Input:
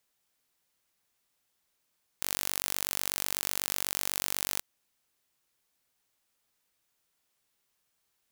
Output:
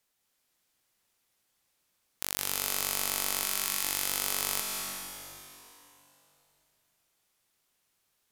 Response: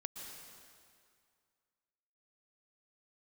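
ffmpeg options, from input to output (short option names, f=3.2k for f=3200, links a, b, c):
-filter_complex "[0:a]asettb=1/sr,asplit=3[a][b][c];[a]atrim=end=3.434[d];[b]atrim=start=3.43:end=3.84,asetpts=PTS-STARTPTS,afade=t=in:d=0.004:c=qsin,afade=t=out:st=0.406:d=0.004:c=qsin,highpass=1k[e];[c]atrim=start=3.836[f];[d][e]acrossfade=d=0.004:c1=hsin:c2=qsin[g];[g][f]acrossfade=d=0.004:c1=qsin:c2=hsin[h];[1:a]atrim=start_sample=2205,asetrate=29988,aresample=44100[i];[h][i]afir=irnorm=-1:irlink=0,volume=2.5dB"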